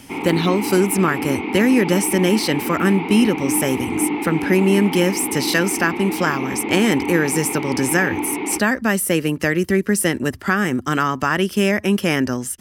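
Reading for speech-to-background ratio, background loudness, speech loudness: 6.0 dB, -25.0 LUFS, -19.0 LUFS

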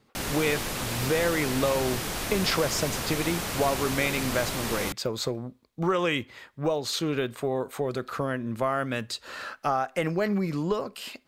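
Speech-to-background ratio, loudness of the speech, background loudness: 2.0 dB, -29.0 LUFS, -31.0 LUFS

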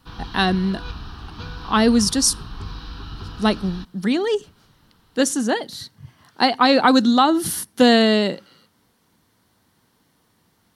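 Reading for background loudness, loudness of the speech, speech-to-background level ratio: -36.5 LUFS, -19.0 LUFS, 17.5 dB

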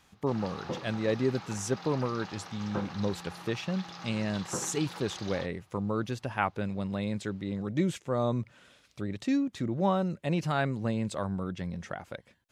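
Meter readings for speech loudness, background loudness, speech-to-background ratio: -32.5 LUFS, -42.5 LUFS, 10.0 dB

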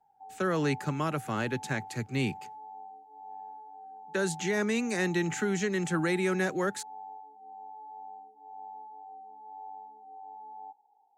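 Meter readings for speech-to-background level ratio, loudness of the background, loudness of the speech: 16.0 dB, -46.5 LUFS, -30.5 LUFS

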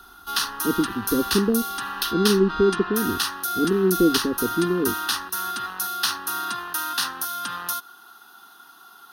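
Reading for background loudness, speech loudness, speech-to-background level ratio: -26.5 LUFS, -23.5 LUFS, 3.0 dB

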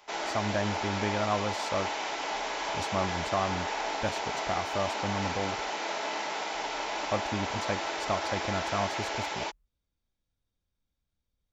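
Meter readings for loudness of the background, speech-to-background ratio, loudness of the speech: -33.0 LUFS, -1.5 dB, -34.5 LUFS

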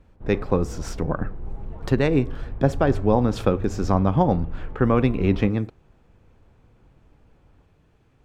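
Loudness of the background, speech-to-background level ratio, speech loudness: -36.5 LUFS, 13.5 dB, -23.0 LUFS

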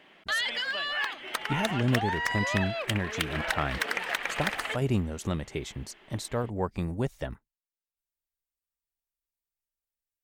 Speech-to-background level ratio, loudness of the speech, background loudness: -2.0 dB, -32.5 LUFS, -30.5 LUFS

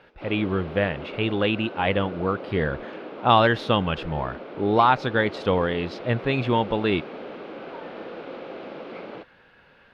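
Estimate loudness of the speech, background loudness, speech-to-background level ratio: -24.0 LUFS, -38.0 LUFS, 14.0 dB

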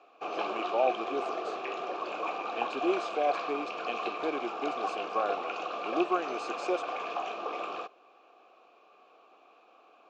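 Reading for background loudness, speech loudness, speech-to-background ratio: -35.5 LUFS, -34.0 LUFS, 1.5 dB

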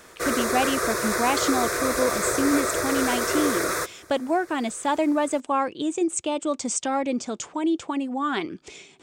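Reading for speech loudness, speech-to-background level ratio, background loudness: -26.0 LUFS, -1.0 dB, -25.0 LUFS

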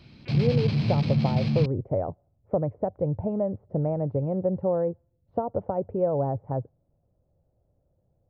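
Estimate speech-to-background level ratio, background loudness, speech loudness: -3.5 dB, -25.5 LUFS, -29.0 LUFS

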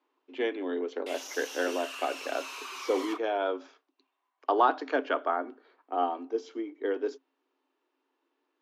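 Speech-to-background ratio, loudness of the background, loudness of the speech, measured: 8.5 dB, -40.0 LUFS, -31.5 LUFS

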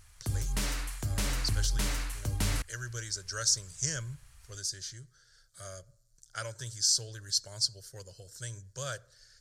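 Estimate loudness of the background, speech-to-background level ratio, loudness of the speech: -33.5 LUFS, 0.5 dB, -33.0 LUFS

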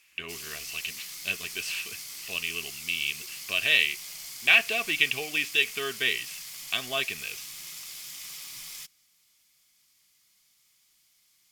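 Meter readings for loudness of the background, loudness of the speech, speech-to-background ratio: -38.5 LUFS, -26.5 LUFS, 12.0 dB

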